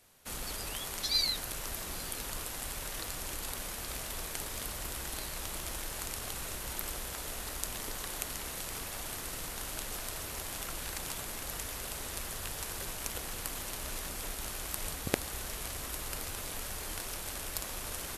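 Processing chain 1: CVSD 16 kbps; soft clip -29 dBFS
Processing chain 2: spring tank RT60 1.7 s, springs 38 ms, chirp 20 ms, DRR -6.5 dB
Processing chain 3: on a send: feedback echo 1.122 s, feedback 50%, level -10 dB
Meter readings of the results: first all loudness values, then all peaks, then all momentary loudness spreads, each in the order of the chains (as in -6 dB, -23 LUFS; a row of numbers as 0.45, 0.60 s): -44.5, -33.0, -36.5 LUFS; -29.0, -6.5, -6.5 dBFS; 1, 4, 3 LU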